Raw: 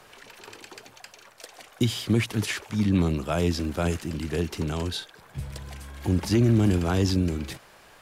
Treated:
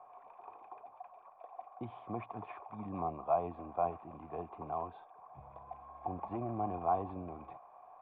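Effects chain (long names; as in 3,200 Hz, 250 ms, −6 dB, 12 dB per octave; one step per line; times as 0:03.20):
formant resonators in series a
low-shelf EQ 190 Hz −5 dB
level +8.5 dB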